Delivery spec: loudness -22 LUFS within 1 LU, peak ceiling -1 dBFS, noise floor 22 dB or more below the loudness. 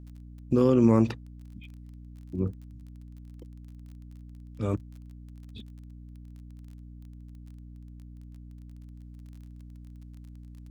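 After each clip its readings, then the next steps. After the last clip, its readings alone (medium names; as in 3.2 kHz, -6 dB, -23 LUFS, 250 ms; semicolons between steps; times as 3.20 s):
tick rate 26 per s; hum 60 Hz; highest harmonic 300 Hz; hum level -43 dBFS; loudness -26.0 LUFS; peak level -10.0 dBFS; loudness target -22.0 LUFS
-> de-click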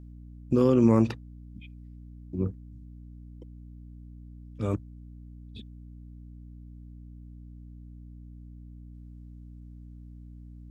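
tick rate 0 per s; hum 60 Hz; highest harmonic 300 Hz; hum level -43 dBFS
-> de-hum 60 Hz, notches 5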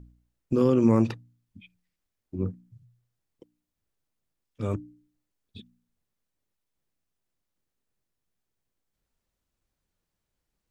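hum not found; loudness -26.0 LUFS; peak level -9.5 dBFS; loudness target -22.0 LUFS
-> trim +4 dB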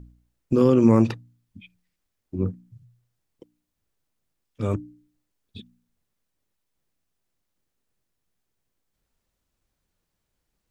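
loudness -22.0 LUFS; peak level -5.5 dBFS; noise floor -80 dBFS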